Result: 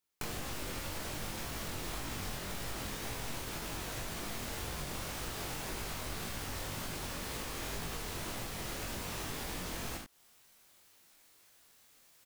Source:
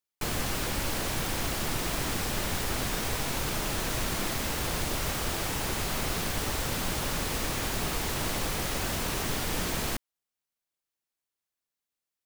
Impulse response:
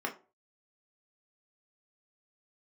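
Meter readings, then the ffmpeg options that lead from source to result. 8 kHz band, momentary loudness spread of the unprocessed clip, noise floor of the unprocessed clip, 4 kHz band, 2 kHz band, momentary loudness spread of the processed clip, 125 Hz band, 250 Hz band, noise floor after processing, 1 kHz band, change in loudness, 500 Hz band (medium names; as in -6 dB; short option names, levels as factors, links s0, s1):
-9.5 dB, 0 LU, under -85 dBFS, -9.0 dB, -9.0 dB, 1 LU, -9.0 dB, -9.0 dB, -64 dBFS, -9.0 dB, -9.5 dB, -9.0 dB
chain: -af "areverse,acompressor=mode=upward:threshold=0.00316:ratio=2.5,areverse,aecho=1:1:43|76:0.501|0.355,acompressor=threshold=0.01:ratio=12,flanger=delay=17.5:depth=6.5:speed=1.9,volume=2.11"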